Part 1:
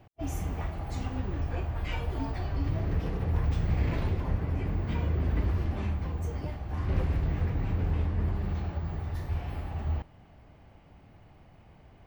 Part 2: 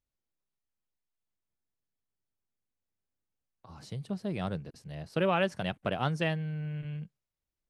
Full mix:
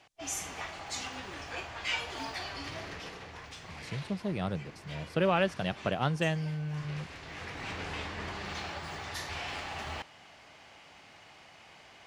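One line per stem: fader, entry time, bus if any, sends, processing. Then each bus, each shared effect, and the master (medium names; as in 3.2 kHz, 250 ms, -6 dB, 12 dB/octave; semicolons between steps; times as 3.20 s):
+2.5 dB, 0.00 s, no send, frequency weighting ITU-R 468; gain riding within 4 dB 2 s; auto duck -10 dB, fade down 0.90 s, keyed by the second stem
+0.5 dB, 0.00 s, no send, none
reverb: none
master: none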